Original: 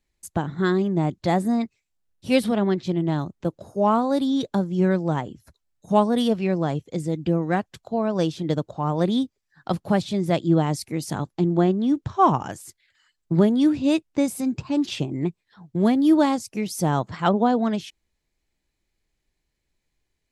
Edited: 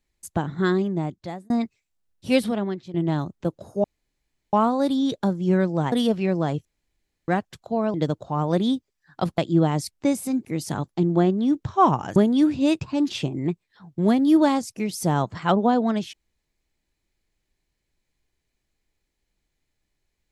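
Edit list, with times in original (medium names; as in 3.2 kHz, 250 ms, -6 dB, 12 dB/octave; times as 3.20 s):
0.72–1.50 s: fade out
2.33–2.94 s: fade out linear, to -16 dB
3.84 s: insert room tone 0.69 s
5.23–6.13 s: delete
6.86–7.49 s: room tone
8.15–8.42 s: delete
9.86–10.33 s: delete
12.57–13.39 s: delete
14.04–14.58 s: move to 10.86 s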